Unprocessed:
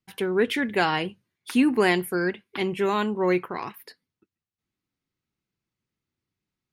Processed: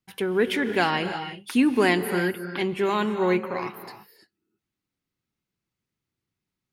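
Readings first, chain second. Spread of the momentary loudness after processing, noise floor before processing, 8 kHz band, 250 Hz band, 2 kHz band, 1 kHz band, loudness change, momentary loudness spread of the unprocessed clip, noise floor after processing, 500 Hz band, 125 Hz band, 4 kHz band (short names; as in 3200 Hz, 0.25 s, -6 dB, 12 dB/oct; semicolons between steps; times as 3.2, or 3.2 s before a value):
11 LU, under -85 dBFS, +0.5 dB, +0.5 dB, +0.5 dB, +0.5 dB, +0.5 dB, 11 LU, under -85 dBFS, +0.5 dB, +1.0 dB, +0.5 dB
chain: non-linear reverb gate 0.36 s rising, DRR 8.5 dB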